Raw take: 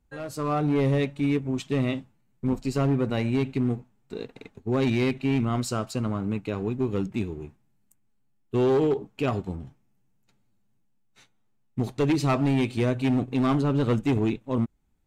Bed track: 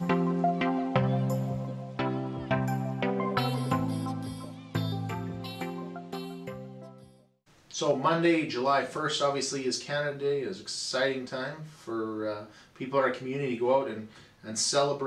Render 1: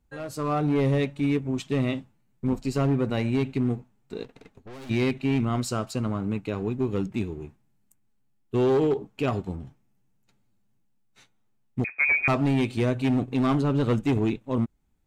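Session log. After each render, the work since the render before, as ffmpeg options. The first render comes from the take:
-filter_complex "[0:a]asplit=3[a][b][c];[a]afade=t=out:st=4.23:d=0.02[d];[b]aeval=exprs='(tanh(112*val(0)+0.55)-tanh(0.55))/112':c=same,afade=t=in:st=4.23:d=0.02,afade=t=out:st=4.89:d=0.02[e];[c]afade=t=in:st=4.89:d=0.02[f];[d][e][f]amix=inputs=3:normalize=0,asettb=1/sr,asplit=3[g][h][i];[g]atrim=end=11.844[j];[h]atrim=start=11.84:end=12.28,asetpts=PTS-STARTPTS,afade=t=in:d=0.004:c=qsin,afade=t=out:st=0.436:d=0.004:c=qsin,lowpass=f=2.2k:t=q:w=0.5098,lowpass=f=2.2k:t=q:w=0.6013,lowpass=f=2.2k:t=q:w=0.9,lowpass=f=2.2k:t=q:w=2.563,afreqshift=-2600[k];[i]atrim=start=12.276[l];[j][k]acrossfade=d=0.004:c1=hsin:c2=qsin[m];[m][l]acrossfade=d=0.004:c1=qsin:c2=hsin"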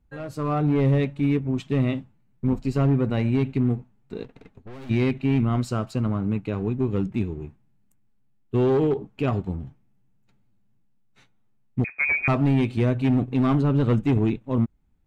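-af "bass=f=250:g=5,treble=f=4k:g=-8"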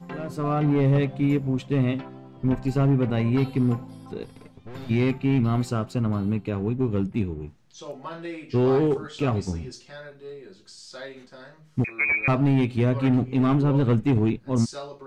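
-filter_complex "[1:a]volume=-11dB[a];[0:a][a]amix=inputs=2:normalize=0"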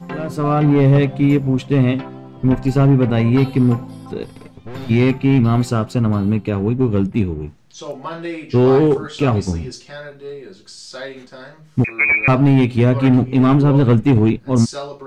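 -af "volume=8dB"

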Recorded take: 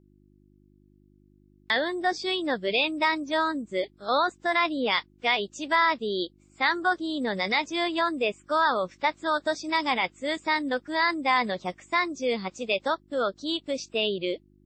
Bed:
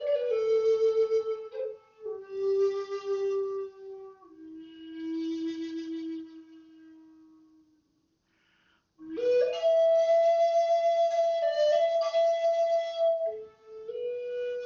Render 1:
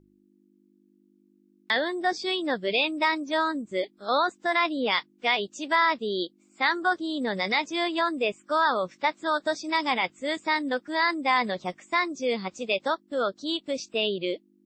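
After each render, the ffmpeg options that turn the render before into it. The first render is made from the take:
-af "bandreject=f=50:t=h:w=4,bandreject=f=100:t=h:w=4,bandreject=f=150:t=h:w=4"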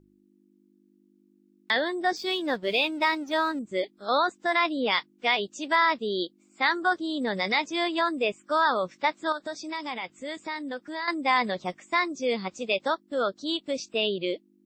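-filter_complex "[0:a]asettb=1/sr,asplit=3[a][b][c];[a]atrim=end=2.164[d];[b]atrim=start=2.16:end=3.59,asetpts=PTS-STARTPTS,afade=t=in:d=0.004:c=qsin,afade=t=out:st=1.426:d=0.004:c=qsin,aeval=exprs='sgn(val(0))*max(abs(val(0))-0.00316,0)':c=same[e];[c]atrim=start=3.586[f];[d][e]acrossfade=d=0.004:c1=hsin:c2=qsin[g];[g][f]acrossfade=d=0.004:c1=qsin:c2=hsin,asettb=1/sr,asplit=3[h][i][j];[h]atrim=end=9.324[k];[i]atrim=start=9.32:end=11.08,asetpts=PTS-STARTPTS,afade=t=in:d=0.004:c=qsin,afade=t=out:st=1.756:d=0.004:c=qsin,acompressor=threshold=-36dB:ratio=2:attack=3.2:release=140:knee=1:detection=peak[l];[j]atrim=start=11.076[m];[k][l]acrossfade=d=0.004:c1=hsin:c2=qsin[n];[n][m]acrossfade=d=0.004:c1=qsin:c2=hsin"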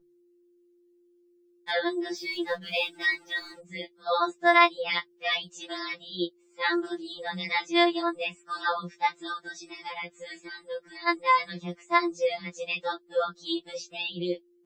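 -af "afftfilt=real='re*2.83*eq(mod(b,8),0)':imag='im*2.83*eq(mod(b,8),0)':win_size=2048:overlap=0.75"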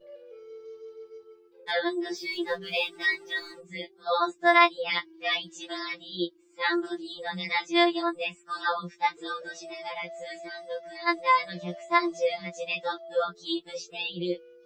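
-filter_complex "[1:a]volume=-19.5dB[a];[0:a][a]amix=inputs=2:normalize=0"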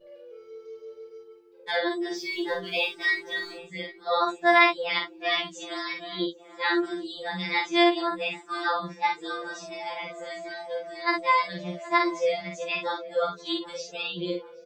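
-filter_complex "[0:a]asplit=2[a][b];[b]adelay=49,volume=-4.5dB[c];[a][c]amix=inputs=2:normalize=0,asplit=2[d][e];[e]adelay=775,lowpass=f=1.6k:p=1,volume=-16.5dB,asplit=2[f][g];[g]adelay=775,lowpass=f=1.6k:p=1,volume=0.52,asplit=2[h][i];[i]adelay=775,lowpass=f=1.6k:p=1,volume=0.52,asplit=2[j][k];[k]adelay=775,lowpass=f=1.6k:p=1,volume=0.52,asplit=2[l][m];[m]adelay=775,lowpass=f=1.6k:p=1,volume=0.52[n];[d][f][h][j][l][n]amix=inputs=6:normalize=0"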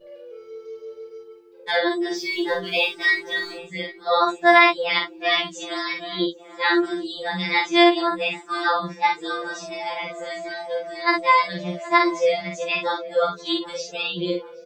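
-af "volume=5.5dB,alimiter=limit=-3dB:level=0:latency=1"

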